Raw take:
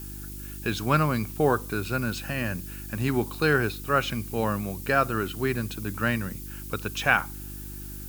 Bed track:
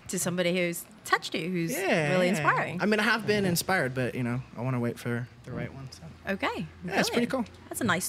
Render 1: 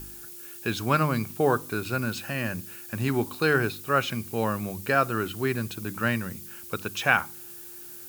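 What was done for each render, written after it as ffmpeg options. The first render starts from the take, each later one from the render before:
-af "bandreject=f=50:t=h:w=4,bandreject=f=100:t=h:w=4,bandreject=f=150:t=h:w=4,bandreject=f=200:t=h:w=4,bandreject=f=250:t=h:w=4,bandreject=f=300:t=h:w=4"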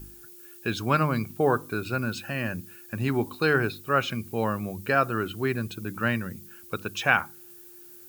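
-af "afftdn=nr=8:nf=-43"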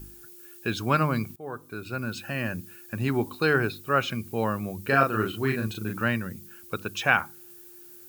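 -filter_complex "[0:a]asettb=1/sr,asplit=3[s0][s1][s2];[s0]atrim=end=4.834[s3];[s1]atrim=start=4.83:end=6.04,asetpts=PTS-STARTPTS,afade=t=in:d=0.004:c=qsin,afade=t=out:st=1.206:d=0.004:c=qsin,asplit=2[s4][s5];[s5]adelay=37,volume=0.708[s6];[s4][s6]amix=inputs=2:normalize=0,atrim=end_sample=53361[s7];[s2]atrim=start=6.036[s8];[s3][s7]acrossfade=d=0.004:c1=hsin:c2=qsin[s9];[s9][s8]acrossfade=d=0.004:c1=qsin:c2=hsin,asplit=2[s10][s11];[s10]atrim=end=1.36,asetpts=PTS-STARTPTS,afade=t=out:st=1.356:d=0.004:c=hsin:silence=0.0707946[s12];[s11]atrim=start=1.36,asetpts=PTS-STARTPTS,afade=t=in:d=0.98:silence=0.0707946[s13];[s12][s13]concat=n=2:v=0:a=1"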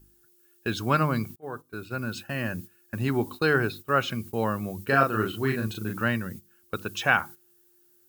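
-af "bandreject=f=2400:w=14,agate=range=0.2:threshold=0.0112:ratio=16:detection=peak"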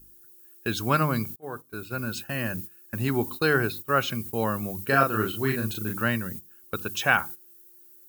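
-af "highshelf=f=7900:g=11"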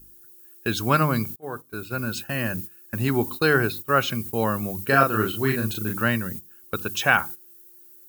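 -af "volume=1.41,alimiter=limit=0.708:level=0:latency=1"

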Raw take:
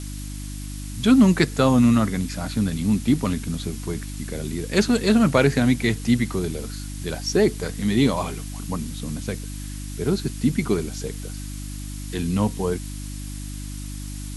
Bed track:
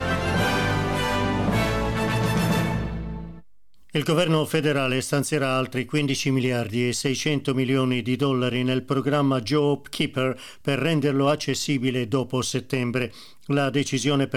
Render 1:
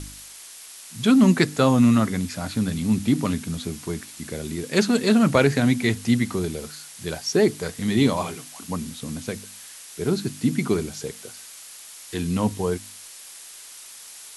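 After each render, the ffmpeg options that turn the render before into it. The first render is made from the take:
-af "bandreject=f=50:t=h:w=4,bandreject=f=100:t=h:w=4,bandreject=f=150:t=h:w=4,bandreject=f=200:t=h:w=4,bandreject=f=250:t=h:w=4,bandreject=f=300:t=h:w=4"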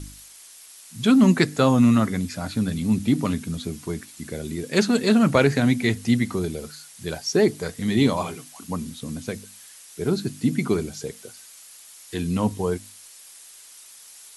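-af "afftdn=nr=6:nf=-43"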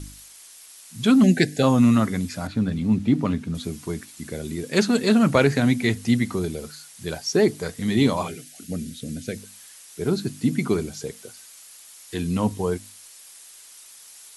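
-filter_complex "[0:a]asplit=3[s0][s1][s2];[s0]afade=t=out:st=1.22:d=0.02[s3];[s1]asuperstop=centerf=1100:order=20:qfactor=1.7,afade=t=in:st=1.22:d=0.02,afade=t=out:st=1.62:d=0.02[s4];[s2]afade=t=in:st=1.62:d=0.02[s5];[s3][s4][s5]amix=inputs=3:normalize=0,asettb=1/sr,asplit=3[s6][s7][s8];[s6]atrim=end=2.474[s9];[s7]atrim=start=2.47:end=3.55,asetpts=PTS-STARTPTS,afade=t=in:d=0.004:c=qsin,afade=t=out:st=1.076:d=0.004:c=qsin,aemphasis=mode=reproduction:type=75fm[s10];[s8]atrim=start=3.546[s11];[s9][s10]acrossfade=d=0.004:c1=hsin:c2=qsin[s12];[s12][s11]acrossfade=d=0.004:c1=qsin:c2=hsin,asettb=1/sr,asplit=3[s13][s14][s15];[s13]atrim=end=8.284[s16];[s14]atrim=start=8.28:end=9.37,asetpts=PTS-STARTPTS,afade=t=in:d=0.004:c=qsin,afade=t=out:st=1.086:d=0.004:c=qsin,asuperstop=centerf=990:order=4:qfactor=1.2[s17];[s15]atrim=start=9.366[s18];[s16][s17]acrossfade=d=0.004:c1=hsin:c2=qsin[s19];[s19][s18]acrossfade=d=0.004:c1=qsin:c2=hsin"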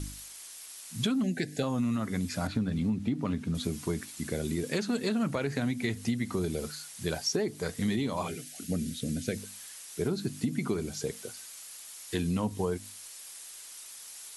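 -af "alimiter=limit=0.188:level=0:latency=1:release=458,acompressor=threshold=0.0501:ratio=6"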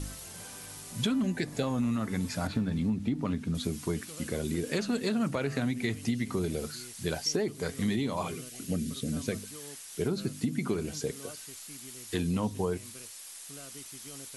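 -filter_complex "[1:a]volume=0.0422[s0];[0:a][s0]amix=inputs=2:normalize=0"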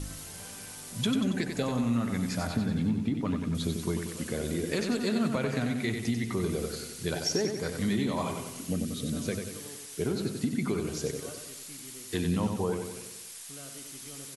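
-af "aecho=1:1:93|186|279|372|465|558|651:0.501|0.266|0.141|0.0746|0.0395|0.021|0.0111"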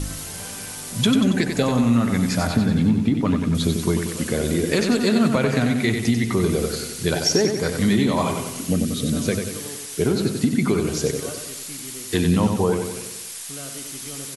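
-af "volume=3.16"

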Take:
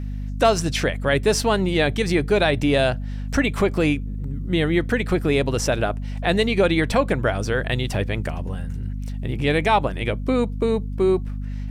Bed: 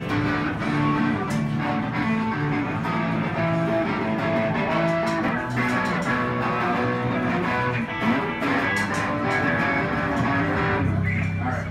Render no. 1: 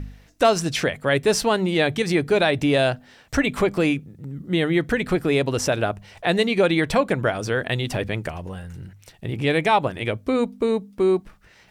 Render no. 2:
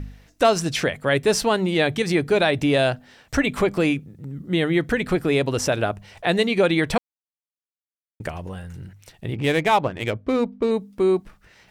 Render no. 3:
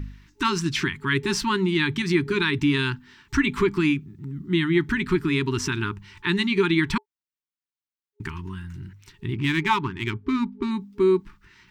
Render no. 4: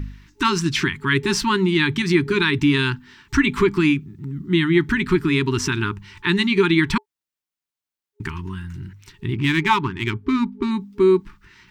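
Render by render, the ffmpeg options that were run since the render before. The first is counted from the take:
-af "bandreject=f=50:t=h:w=4,bandreject=f=100:t=h:w=4,bandreject=f=150:t=h:w=4,bandreject=f=200:t=h:w=4,bandreject=f=250:t=h:w=4"
-filter_complex "[0:a]asettb=1/sr,asplit=3[s0][s1][s2];[s0]atrim=end=9.354[s3];[s1]atrim=start=9.35:end=10.71,asetpts=PTS-STARTPTS,afade=t=in:d=0.004:c=qsin,afade=t=out:st=1.356:d=0.004:c=qsin,adynamicsmooth=sensitivity=5:basefreq=2100[s4];[s2]atrim=start=10.706[s5];[s3][s4]acrossfade=d=0.004:c1=hsin:c2=qsin[s6];[s6][s5]acrossfade=d=0.004:c1=qsin:c2=hsin,asplit=3[s7][s8][s9];[s7]atrim=end=6.98,asetpts=PTS-STARTPTS,afade=t=out:st=6.976:d=0.004:c=hsin[s10];[s8]atrim=start=6.98:end=8.2,asetpts=PTS-STARTPTS,volume=0[s11];[s9]atrim=start=8.2,asetpts=PTS-STARTPTS,afade=t=in:d=0.004:c=hsin[s12];[s10][s11][s12]concat=n=3:v=0:a=1"
-af "afftfilt=real='re*(1-between(b*sr/4096,410,870))':imag='im*(1-between(b*sr/4096,410,870))':win_size=4096:overlap=0.75,equalizer=f=11000:w=0.94:g=-11.5"
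-af "volume=1.58"

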